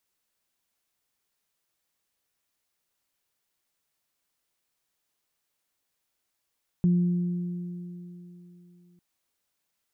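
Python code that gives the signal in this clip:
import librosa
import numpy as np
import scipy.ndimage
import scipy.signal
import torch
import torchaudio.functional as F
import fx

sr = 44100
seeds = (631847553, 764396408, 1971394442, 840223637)

y = fx.additive(sr, length_s=2.15, hz=176.0, level_db=-17.5, upper_db=(-18.0,), decay_s=3.28, upper_decays_s=(4.01,))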